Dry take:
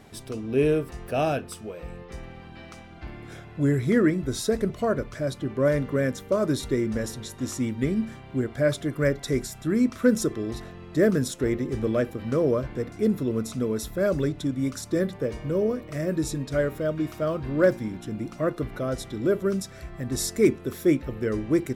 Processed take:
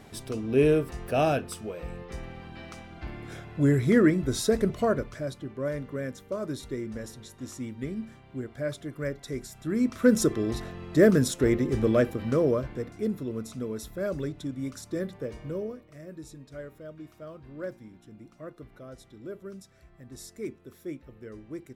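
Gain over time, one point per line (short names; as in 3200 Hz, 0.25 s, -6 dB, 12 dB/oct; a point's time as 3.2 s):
4.83 s +0.5 dB
5.53 s -9 dB
9.38 s -9 dB
10.24 s +2 dB
12.08 s +2 dB
13.16 s -7 dB
15.51 s -7 dB
15.91 s -16.5 dB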